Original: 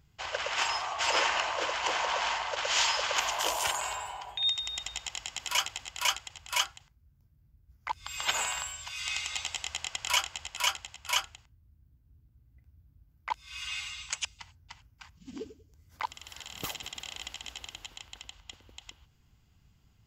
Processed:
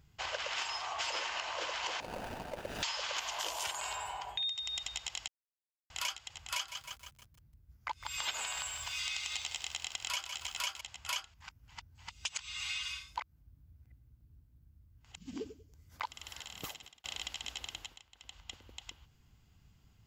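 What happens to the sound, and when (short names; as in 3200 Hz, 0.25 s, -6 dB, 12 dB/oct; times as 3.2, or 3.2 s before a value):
2–2.83 median filter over 41 samples
5.28–5.9 mute
6.51–10.81 lo-fi delay 0.156 s, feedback 55%, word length 8-bit, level -11.5 dB
11.34–15.16 reverse
16.25–17.04 fade out
17.78–18.41 dip -14 dB, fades 0.24 s
whole clip: dynamic EQ 4200 Hz, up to +5 dB, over -42 dBFS, Q 0.88; compressor 6:1, threshold -35 dBFS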